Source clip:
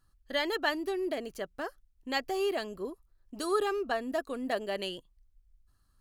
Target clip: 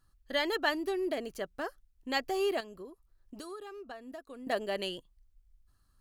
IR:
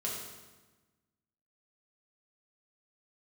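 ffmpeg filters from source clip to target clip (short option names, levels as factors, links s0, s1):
-filter_complex "[0:a]asettb=1/sr,asplit=3[s0][s1][s2];[s0]atrim=end=2.604[s3];[s1]atrim=start=2.6:end=4.47,asetpts=PTS-STARTPTS,afade=t=in:d=0.004:c=qsin,afade=t=out:st=1.866:d=0.004:c=qsin,acompressor=threshold=0.00631:ratio=5[s4];[s2]atrim=start=4.466[s5];[s3][s4]acrossfade=d=0.004:c1=hsin:c2=qsin[s6];[s6][s5]acrossfade=d=0.004:c1=qsin:c2=hsin"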